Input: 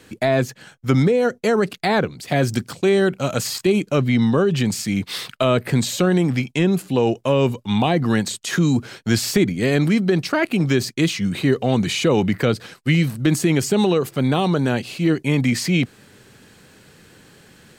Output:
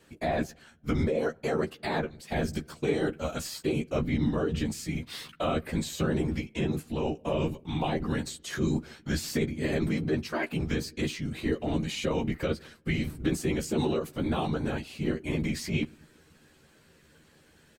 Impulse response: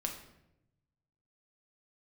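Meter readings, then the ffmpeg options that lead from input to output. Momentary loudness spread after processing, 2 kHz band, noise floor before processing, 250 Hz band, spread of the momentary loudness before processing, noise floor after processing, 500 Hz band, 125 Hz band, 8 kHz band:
5 LU, -11.0 dB, -51 dBFS, -11.0 dB, 5 LU, -60 dBFS, -11.0 dB, -11.5 dB, -12.0 dB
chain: -filter_complex "[0:a]asplit=2[s0][s1];[1:a]atrim=start_sample=2205,asetrate=52920,aresample=44100,lowpass=3500[s2];[s1][s2]afir=irnorm=-1:irlink=0,volume=0.141[s3];[s0][s3]amix=inputs=2:normalize=0,afftfilt=real='hypot(re,im)*cos(2*PI*random(0))':imag='hypot(re,im)*sin(2*PI*random(1))':win_size=512:overlap=0.75,asplit=2[s4][s5];[s5]adelay=13,volume=0.562[s6];[s4][s6]amix=inputs=2:normalize=0,volume=0.447"

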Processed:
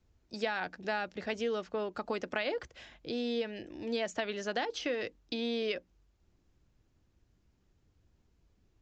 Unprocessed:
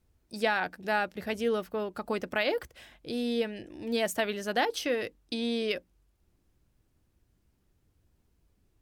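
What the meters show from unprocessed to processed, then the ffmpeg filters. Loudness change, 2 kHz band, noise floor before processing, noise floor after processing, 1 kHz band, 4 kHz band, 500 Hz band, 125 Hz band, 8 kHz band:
-4.5 dB, -5.0 dB, -72 dBFS, -72 dBFS, -6.0 dB, -3.5 dB, -4.0 dB, -5.0 dB, -7.5 dB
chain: -filter_complex "[0:a]aresample=16000,aresample=44100,acrossover=split=230|3500[s0][s1][s2];[s0]acompressor=threshold=0.00282:ratio=4[s3];[s1]acompressor=threshold=0.0282:ratio=4[s4];[s2]acompressor=threshold=0.00562:ratio=4[s5];[s3][s4][s5]amix=inputs=3:normalize=0"

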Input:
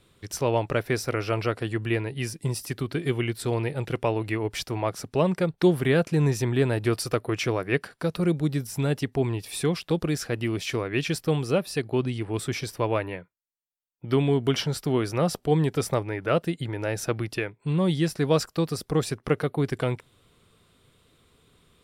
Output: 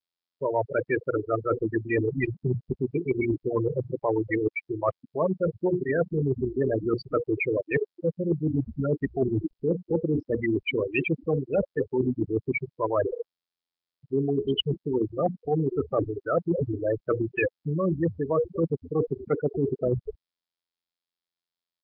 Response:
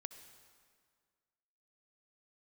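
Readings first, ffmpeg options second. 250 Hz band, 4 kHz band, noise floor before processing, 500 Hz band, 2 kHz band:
-1.0 dB, -4.5 dB, -69 dBFS, +0.5 dB, -1.0 dB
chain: -filter_complex "[0:a]bandreject=f=60:t=h:w=6,bandreject=f=120:t=h:w=6,bandreject=f=180:t=h:w=6,bandreject=f=240:t=h:w=6,bandreject=f=300:t=h:w=6,bandreject=f=360:t=h:w=6,bandreject=f=420:t=h:w=6,bandreject=f=480:t=h:w=6,asplit=6[s0][s1][s2][s3][s4][s5];[s1]adelay=242,afreqshift=-80,volume=0.251[s6];[s2]adelay=484,afreqshift=-160,volume=0.114[s7];[s3]adelay=726,afreqshift=-240,volume=0.0507[s8];[s4]adelay=968,afreqshift=-320,volume=0.0229[s9];[s5]adelay=1210,afreqshift=-400,volume=0.0104[s10];[s0][s6][s7][s8][s9][s10]amix=inputs=6:normalize=0,asplit=2[s11][s12];[1:a]atrim=start_sample=2205,atrim=end_sample=3969[s13];[s12][s13]afir=irnorm=-1:irlink=0,volume=2.11[s14];[s11][s14]amix=inputs=2:normalize=0,dynaudnorm=f=110:g=11:m=1.78,afftfilt=real='re*gte(hypot(re,im),0.447)':imag='im*gte(hypot(re,im),0.447)':win_size=1024:overlap=0.75,aemphasis=mode=production:type=riaa,areverse,acompressor=threshold=0.0282:ratio=8,areverse,volume=2.66" -ar 11025 -c:a nellymoser

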